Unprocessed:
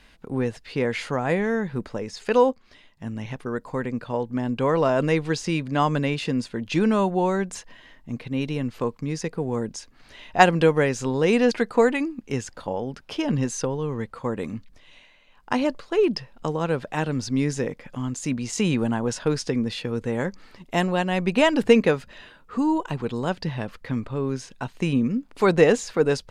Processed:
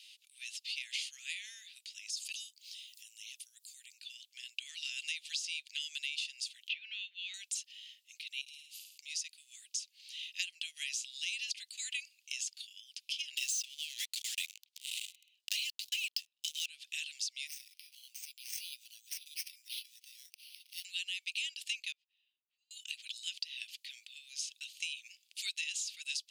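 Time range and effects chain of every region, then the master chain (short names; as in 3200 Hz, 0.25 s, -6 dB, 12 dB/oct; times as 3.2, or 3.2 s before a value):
2.1–3.98 pre-emphasis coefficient 0.9 + upward compressor, threshold -41 dBFS
6.69–7.34 LPF 3000 Hz 24 dB/oct + three-band squash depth 100%
8.41–8.98 pre-emphasis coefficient 0.8 + compressor 5:1, threshold -47 dBFS + flutter echo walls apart 9.2 m, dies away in 0.79 s
13.37–16.66 median filter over 3 samples + Chebyshev high-pass 2000 Hz + sample leveller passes 5
17.47–20.85 band-pass 6100 Hz, Q 3.8 + upward compressor, threshold -44 dBFS + careless resampling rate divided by 6×, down none, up hold
21.92–22.71 band-pass 200 Hz, Q 2.5 + air absorption 54 m
whole clip: steep high-pass 2700 Hz 48 dB/oct; compressor 10:1, threshold -40 dBFS; gain +5.5 dB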